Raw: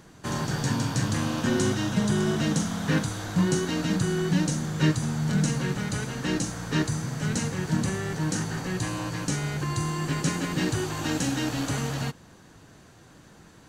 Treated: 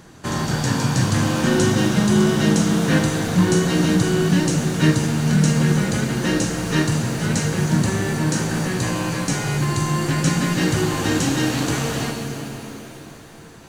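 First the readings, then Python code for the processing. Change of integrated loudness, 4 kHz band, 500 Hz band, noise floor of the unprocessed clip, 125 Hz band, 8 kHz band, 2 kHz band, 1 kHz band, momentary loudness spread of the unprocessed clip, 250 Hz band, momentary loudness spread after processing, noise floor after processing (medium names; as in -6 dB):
+7.5 dB, +7.5 dB, +8.5 dB, -52 dBFS, +7.5 dB, +7.0 dB, +7.5 dB, +7.5 dB, 5 LU, +8.0 dB, 7 LU, -41 dBFS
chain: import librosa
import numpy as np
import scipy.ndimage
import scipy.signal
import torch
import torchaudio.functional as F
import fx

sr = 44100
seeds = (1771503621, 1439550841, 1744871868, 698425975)

y = fx.rev_shimmer(x, sr, seeds[0], rt60_s=3.3, semitones=7, shimmer_db=-8, drr_db=3.5)
y = y * 10.0 ** (5.5 / 20.0)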